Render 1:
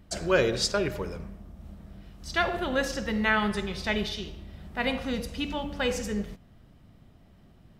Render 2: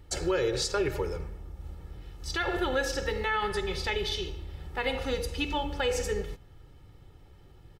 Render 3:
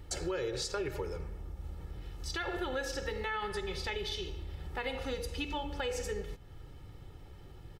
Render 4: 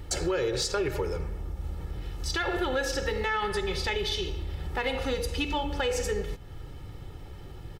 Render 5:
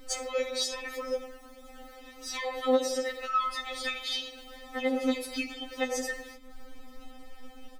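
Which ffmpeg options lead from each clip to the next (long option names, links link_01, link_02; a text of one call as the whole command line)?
ffmpeg -i in.wav -af "aecho=1:1:2.3:0.86,alimiter=limit=-19dB:level=0:latency=1:release=128" out.wav
ffmpeg -i in.wav -af "acompressor=threshold=-44dB:ratio=2,volume=3dB" out.wav
ffmpeg -i in.wav -af "asoftclip=type=tanh:threshold=-25.5dB,volume=8dB" out.wav
ffmpeg -i in.wav -filter_complex "[0:a]acrossover=split=140|3000[link_01][link_02][link_03];[link_01]acrusher=samples=23:mix=1:aa=0.000001:lfo=1:lforange=23:lforate=2.3[link_04];[link_04][link_02][link_03]amix=inputs=3:normalize=0,afftfilt=real='re*3.46*eq(mod(b,12),0)':imag='im*3.46*eq(mod(b,12),0)':win_size=2048:overlap=0.75,volume=1.5dB" out.wav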